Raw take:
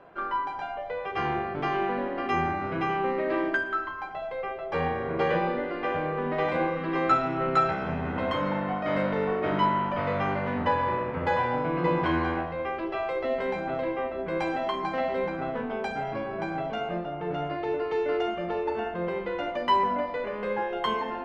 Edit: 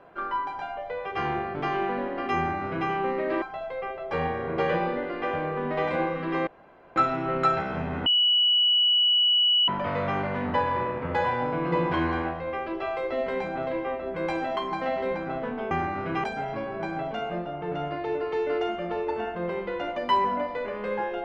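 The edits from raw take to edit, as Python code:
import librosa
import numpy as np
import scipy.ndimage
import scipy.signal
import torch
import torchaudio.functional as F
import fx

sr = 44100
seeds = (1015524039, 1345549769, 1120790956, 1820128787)

y = fx.edit(x, sr, fx.duplicate(start_s=2.37, length_s=0.53, to_s=15.83),
    fx.cut(start_s=3.42, length_s=0.61),
    fx.insert_room_tone(at_s=7.08, length_s=0.49),
    fx.bleep(start_s=8.18, length_s=1.62, hz=2940.0, db=-18.0), tone=tone)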